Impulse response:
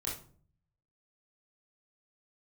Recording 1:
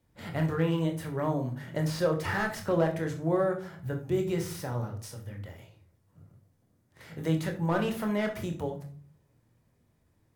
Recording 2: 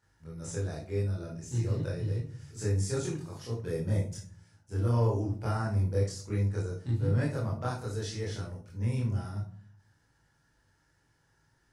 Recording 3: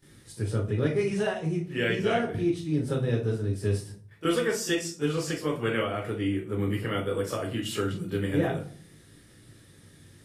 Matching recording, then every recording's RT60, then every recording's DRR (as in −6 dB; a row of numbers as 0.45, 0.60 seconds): 2; 0.50, 0.50, 0.50 seconds; 3.5, −6.5, −14.5 decibels